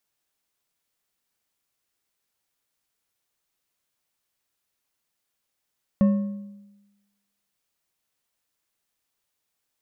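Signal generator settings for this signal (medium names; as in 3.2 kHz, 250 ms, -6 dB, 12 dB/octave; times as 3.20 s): metal hit bar, lowest mode 202 Hz, decay 1.09 s, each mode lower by 11.5 dB, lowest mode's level -13 dB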